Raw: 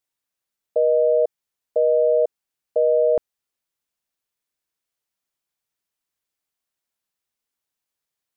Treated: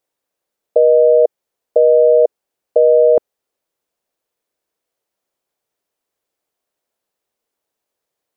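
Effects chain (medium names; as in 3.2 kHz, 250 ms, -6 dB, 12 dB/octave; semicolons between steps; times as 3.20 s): in parallel at -0.5 dB: compressor with a negative ratio -22 dBFS, ratio -0.5; on the sum: peaking EQ 500 Hz +13 dB 1.8 oct; trim -7.5 dB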